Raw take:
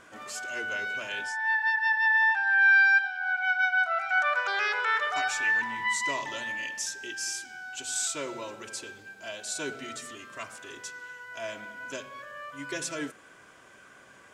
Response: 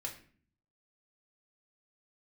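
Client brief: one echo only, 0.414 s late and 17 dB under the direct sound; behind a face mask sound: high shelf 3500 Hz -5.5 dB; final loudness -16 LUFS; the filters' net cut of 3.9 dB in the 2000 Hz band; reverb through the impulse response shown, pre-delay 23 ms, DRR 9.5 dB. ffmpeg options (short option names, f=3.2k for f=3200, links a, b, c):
-filter_complex "[0:a]equalizer=f=2k:t=o:g=-4,aecho=1:1:414:0.141,asplit=2[a][b];[1:a]atrim=start_sample=2205,adelay=23[c];[b][c]afir=irnorm=-1:irlink=0,volume=-8.5dB[d];[a][d]amix=inputs=2:normalize=0,highshelf=f=3.5k:g=-5.5,volume=13.5dB"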